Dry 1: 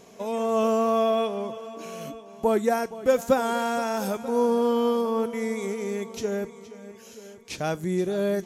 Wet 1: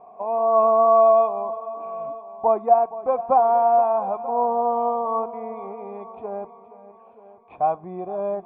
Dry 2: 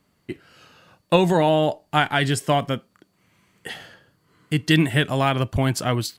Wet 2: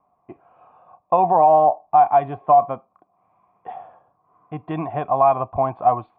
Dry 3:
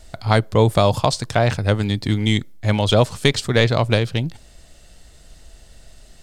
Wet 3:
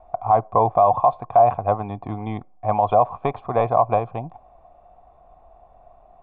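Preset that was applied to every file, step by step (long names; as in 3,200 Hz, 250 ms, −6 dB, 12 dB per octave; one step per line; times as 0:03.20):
formant resonators in series a
boost into a limiter +22 dB
level −5 dB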